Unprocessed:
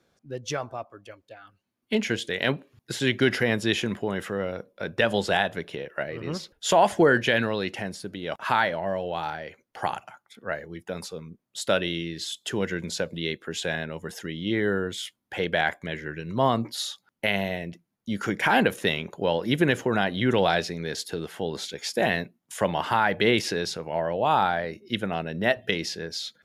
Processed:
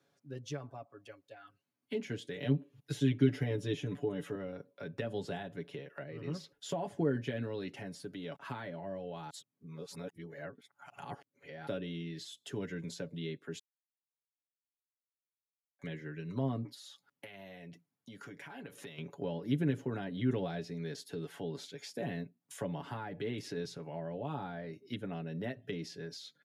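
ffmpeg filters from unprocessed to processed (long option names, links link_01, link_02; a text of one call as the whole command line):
ffmpeg -i in.wav -filter_complex "[0:a]asettb=1/sr,asplit=3[link_01][link_02][link_03];[link_01]atrim=end=2.364[link_04];[link_02]atrim=start=2.36:end=4.35,asetpts=PTS-STARTPTS,afade=type=in:duration=0.004:curve=qsin,afade=type=out:start_time=1.986:duration=0.004:curve=qsin,aecho=1:1:6.8:0.97,atrim=end_sample=87759[link_05];[link_03]atrim=start=4.346[link_06];[link_04][link_05]acrossfade=duration=0.004:curve1=hsin:curve2=qsin[link_07];[link_07][link_06]acrossfade=duration=0.004:curve1=qsin:curve2=hsin,asettb=1/sr,asplit=3[link_08][link_09][link_10];[link_08]atrim=end=16.744[link_11];[link_09]atrim=start=16.74:end=18.98,asetpts=PTS-STARTPTS,afade=type=in:duration=0.004:curve=qsin,afade=type=out:start_time=2.236:duration=0.004:curve=qsin,acompressor=threshold=-40dB:ratio=3:attack=3.2:release=140:knee=1:detection=peak[link_12];[link_10]atrim=start=18.976[link_13];[link_11][link_12]acrossfade=duration=0.004:curve1=hsin:curve2=qsin[link_14];[link_14][link_13]acrossfade=duration=0.004:curve1=qsin:curve2=hsin,asettb=1/sr,asplit=3[link_15][link_16][link_17];[link_15]atrim=end=23.084[link_18];[link_16]atrim=start=23.08:end=23.57,asetpts=PTS-STARTPTS,afade=type=in:duration=0.004:curve=qsin,afade=type=out:start_time=0.486:duration=0.004:curve=qsin,acompressor=threshold=-27dB:ratio=1.5:attack=3.2:release=140:knee=1:detection=peak[link_19];[link_17]atrim=start=23.566[link_20];[link_18][link_19]acrossfade=duration=0.004:curve1=hsin:curve2=qsin[link_21];[link_21][link_20]acrossfade=duration=0.004:curve1=qsin:curve2=hsin,asplit=5[link_22][link_23][link_24][link_25][link_26];[link_22]atrim=end=9.302[link_27];[link_23]atrim=start=9.298:end=11.672,asetpts=PTS-STARTPTS,areverse[link_28];[link_24]atrim=start=11.668:end=13.59,asetpts=PTS-STARTPTS,afade=type=out:start_time=1.918:duration=0.004:curve=hsin[link_29];[link_25]atrim=start=13.59:end=15.79,asetpts=PTS-STARTPTS,volume=0[link_30];[link_26]atrim=start=15.79,asetpts=PTS-STARTPTS,afade=type=in:duration=0.004:curve=hsin[link_31];[link_27][link_28]acrossfade=duration=0.004:curve1=hsin:curve2=hsin[link_32];[link_29][link_30][link_31]concat=n=3:v=0:a=1[link_33];[link_32][link_33]acrossfade=duration=0.004:curve1=hsin:curve2=hsin,highpass=97,aecho=1:1:7.1:0.7,acrossover=split=390[link_34][link_35];[link_35]acompressor=threshold=-41dB:ratio=3[link_36];[link_34][link_36]amix=inputs=2:normalize=0,volume=-8dB" out.wav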